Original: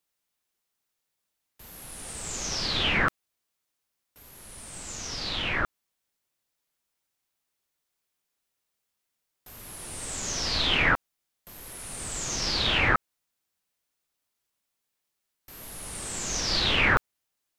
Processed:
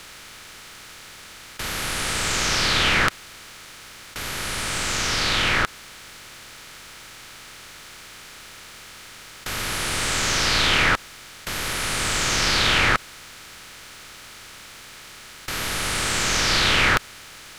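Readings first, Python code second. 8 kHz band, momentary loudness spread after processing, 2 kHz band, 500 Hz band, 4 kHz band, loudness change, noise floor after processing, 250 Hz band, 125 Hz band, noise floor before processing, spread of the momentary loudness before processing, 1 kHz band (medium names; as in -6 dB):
+7.5 dB, 23 LU, +6.5 dB, +6.0 dB, +7.0 dB, +5.5 dB, -43 dBFS, +5.0 dB, +6.0 dB, -82 dBFS, 20 LU, +7.0 dB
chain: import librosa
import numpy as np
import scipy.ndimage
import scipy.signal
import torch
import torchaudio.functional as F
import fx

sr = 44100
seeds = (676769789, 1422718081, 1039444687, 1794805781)

y = fx.bin_compress(x, sr, power=0.4)
y = fx.high_shelf(y, sr, hz=12000.0, db=7.5)
y = y * librosa.db_to_amplitude(-1.0)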